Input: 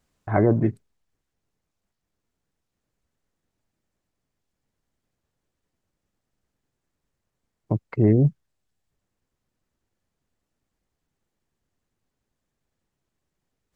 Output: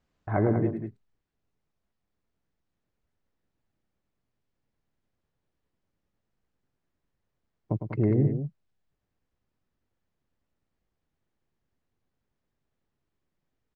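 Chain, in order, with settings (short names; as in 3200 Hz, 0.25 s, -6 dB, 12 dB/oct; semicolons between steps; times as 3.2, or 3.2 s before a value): in parallel at -2 dB: compressor, threshold -24 dBFS, peak gain reduction 11 dB; on the sum: air absorption 120 m; loudspeakers at several distances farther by 36 m -8 dB, 67 m -9 dB; gain -8 dB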